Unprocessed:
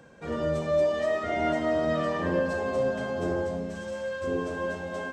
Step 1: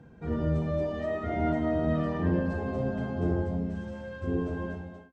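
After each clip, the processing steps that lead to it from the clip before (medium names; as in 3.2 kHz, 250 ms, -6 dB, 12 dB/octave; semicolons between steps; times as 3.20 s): fade out at the end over 0.51 s; RIAA curve playback; comb of notches 560 Hz; trim -4 dB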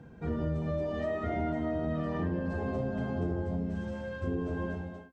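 compression, threshold -30 dBFS, peak gain reduction 8.5 dB; trim +1.5 dB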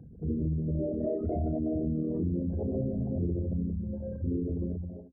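resonances exaggerated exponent 3; trim +2 dB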